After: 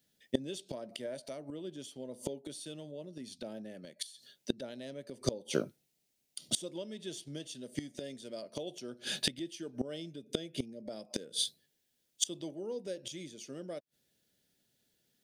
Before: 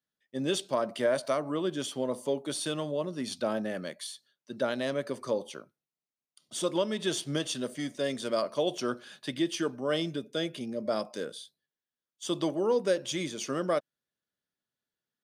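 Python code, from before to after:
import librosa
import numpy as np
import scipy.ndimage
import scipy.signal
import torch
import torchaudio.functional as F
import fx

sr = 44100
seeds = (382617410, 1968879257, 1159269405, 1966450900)

y = fx.peak_eq(x, sr, hz=1200.0, db=-13.5, octaves=1.2)
y = fx.notch(y, sr, hz=1100.0, q=12.0)
y = fx.gate_flip(y, sr, shuts_db=-31.0, range_db=-27)
y = y * 10.0 ** (16.5 / 20.0)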